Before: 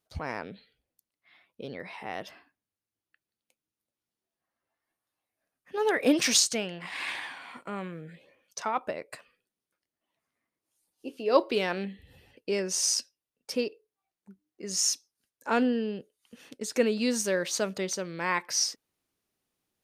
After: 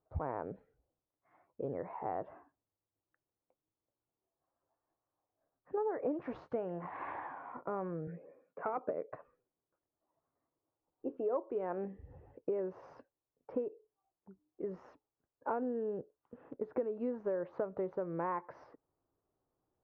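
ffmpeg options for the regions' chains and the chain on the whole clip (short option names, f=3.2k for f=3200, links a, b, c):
-filter_complex "[0:a]asettb=1/sr,asplit=3[a][b][c];[a]atrim=end=8.074[d];[b]atrim=start=8.07:end=9.12,asetpts=PTS-STARTPTS,afade=t=in:d=0.004:c=qsin,afade=t=out:st=1.046:d=0.004:c=qsin,aeval=exprs='clip(val(0),-1,0.0473)':c=same,highpass=170,equalizer=f=180:t=q:w=4:g=8,equalizer=f=260:t=q:w=4:g=5,equalizer=f=450:t=q:w=4:g=7,equalizer=f=930:t=q:w=4:g=-7,equalizer=f=1.6k:t=q:w=4:g=3,equalizer=f=2.4k:t=q:w=4:g=9,lowpass=f=2.5k:w=0.5412,lowpass=f=2.5k:w=1.3066[e];[c]atrim=start=9.116[f];[d][e]acrossfade=d=0.004:c1=hsin:c2=qsin[g];[g][f]acrossfade=d=0.004:c1=qsin:c2=hsin,lowpass=f=1.1k:w=0.5412,lowpass=f=1.1k:w=1.3066,equalizer=f=210:w=3.3:g=-11.5,acompressor=threshold=-36dB:ratio=8,volume=3.5dB"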